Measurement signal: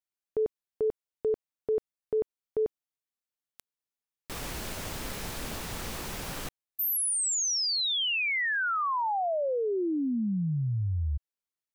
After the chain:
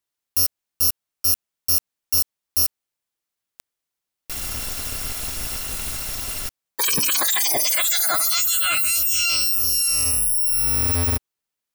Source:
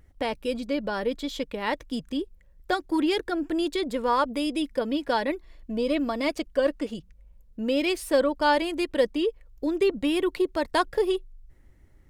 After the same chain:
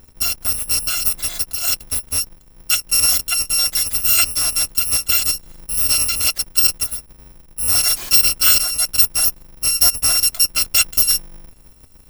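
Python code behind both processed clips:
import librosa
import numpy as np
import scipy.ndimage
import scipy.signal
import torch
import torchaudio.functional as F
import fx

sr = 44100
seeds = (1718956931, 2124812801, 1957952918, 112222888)

y = fx.bit_reversed(x, sr, seeds[0], block=256)
y = y * librosa.db_to_amplitude(8.5)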